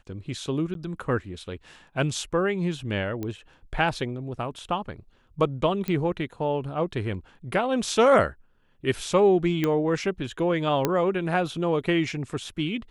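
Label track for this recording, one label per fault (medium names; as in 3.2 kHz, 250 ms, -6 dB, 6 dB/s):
0.740000	0.750000	dropout 12 ms
3.230000	3.230000	pop -19 dBFS
5.880000	5.880000	pop -16 dBFS
9.640000	9.640000	pop -12 dBFS
10.850000	10.850000	pop -8 dBFS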